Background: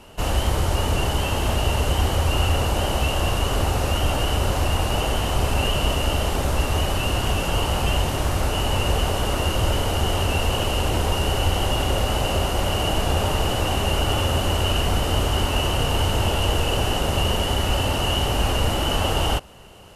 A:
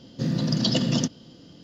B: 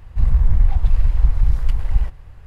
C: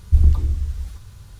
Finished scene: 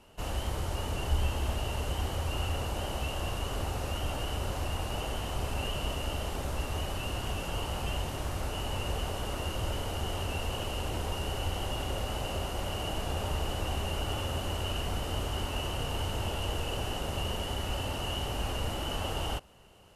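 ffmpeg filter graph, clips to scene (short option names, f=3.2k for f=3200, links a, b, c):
-filter_complex "[3:a]asplit=2[a][b];[0:a]volume=-12dB[c];[b]acompressor=threshold=-21dB:ratio=6:attack=3.2:release=140:knee=1:detection=peak[d];[a]atrim=end=1.39,asetpts=PTS-STARTPTS,volume=-16dB,afade=t=in:d=0.004:c=hsin,afade=t=out:st=1.386:d=0.004:c=hsin,adelay=980[e];[d]atrim=end=1.39,asetpts=PTS-STARTPTS,volume=-12dB,afade=t=in:d=0.004:c=hsin,afade=t=out:st=1.386:d=0.004:c=hsin,adelay=13170[f];[c][e][f]amix=inputs=3:normalize=0"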